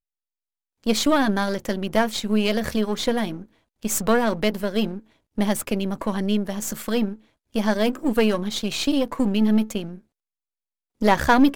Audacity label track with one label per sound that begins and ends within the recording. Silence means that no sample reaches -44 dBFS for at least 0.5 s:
0.840000	9.990000	sound